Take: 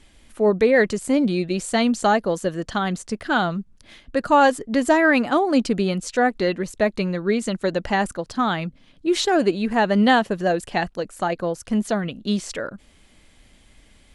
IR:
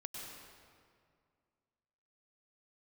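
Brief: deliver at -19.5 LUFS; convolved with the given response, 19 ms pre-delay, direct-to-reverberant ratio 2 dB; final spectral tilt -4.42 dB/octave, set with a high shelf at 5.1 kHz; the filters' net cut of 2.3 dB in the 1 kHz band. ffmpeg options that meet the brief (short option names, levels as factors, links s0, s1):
-filter_complex "[0:a]equalizer=f=1000:t=o:g=-3.5,highshelf=f=5100:g=7,asplit=2[s0][s1];[1:a]atrim=start_sample=2205,adelay=19[s2];[s1][s2]afir=irnorm=-1:irlink=0,volume=1[s3];[s0][s3]amix=inputs=2:normalize=0"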